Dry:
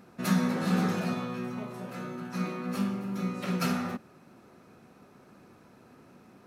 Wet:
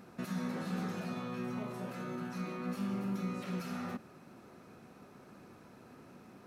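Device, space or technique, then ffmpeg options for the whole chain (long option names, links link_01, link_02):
de-esser from a sidechain: -filter_complex "[0:a]asplit=2[link_01][link_02];[link_02]highpass=frequency=5600:poles=1,apad=whole_len=285020[link_03];[link_01][link_03]sidechaincompress=threshold=-53dB:ratio=4:attack=1.1:release=69"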